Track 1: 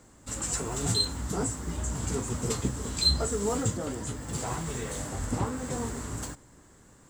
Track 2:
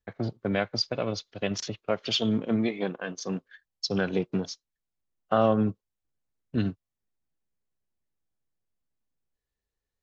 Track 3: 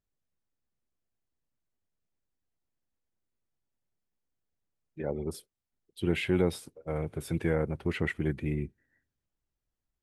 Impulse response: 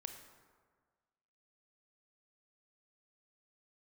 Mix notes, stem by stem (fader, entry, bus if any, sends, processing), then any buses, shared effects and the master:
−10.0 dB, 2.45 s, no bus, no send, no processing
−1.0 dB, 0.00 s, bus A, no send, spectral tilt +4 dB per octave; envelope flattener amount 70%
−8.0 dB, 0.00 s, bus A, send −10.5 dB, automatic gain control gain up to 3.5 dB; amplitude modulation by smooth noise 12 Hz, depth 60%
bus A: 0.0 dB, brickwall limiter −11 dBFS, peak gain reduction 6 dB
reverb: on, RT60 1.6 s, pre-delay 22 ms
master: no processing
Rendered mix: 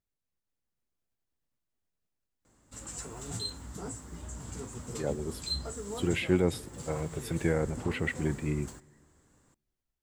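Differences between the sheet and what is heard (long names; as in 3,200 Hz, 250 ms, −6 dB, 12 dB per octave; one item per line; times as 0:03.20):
stem 2: muted
stem 3 −8.0 dB → −1.5 dB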